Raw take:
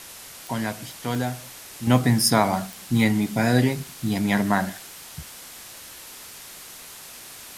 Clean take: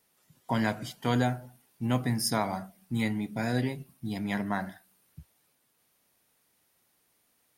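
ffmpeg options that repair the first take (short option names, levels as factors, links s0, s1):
-af "adeclick=t=4,afwtdn=0.01,asetnsamples=n=441:p=0,asendcmd='1.87 volume volume -9.5dB',volume=1"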